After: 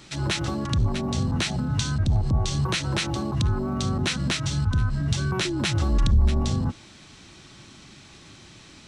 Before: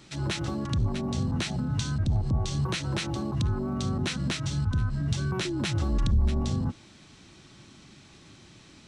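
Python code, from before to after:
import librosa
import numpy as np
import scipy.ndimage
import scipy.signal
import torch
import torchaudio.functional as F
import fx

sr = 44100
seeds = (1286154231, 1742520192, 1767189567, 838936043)

y = fx.peak_eq(x, sr, hz=210.0, db=-3.5, octaves=2.9)
y = y * 10.0 ** (6.0 / 20.0)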